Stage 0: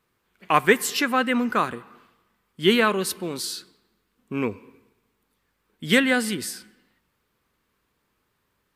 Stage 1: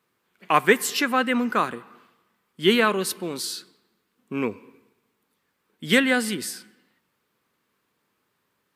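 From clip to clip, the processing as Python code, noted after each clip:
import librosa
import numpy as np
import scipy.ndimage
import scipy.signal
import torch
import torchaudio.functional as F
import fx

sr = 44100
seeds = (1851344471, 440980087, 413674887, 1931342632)

y = scipy.signal.sosfilt(scipy.signal.butter(2, 140.0, 'highpass', fs=sr, output='sos'), x)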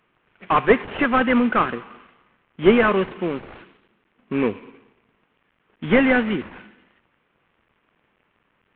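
y = fx.cvsd(x, sr, bps=16000)
y = y * 10.0 ** (6.5 / 20.0)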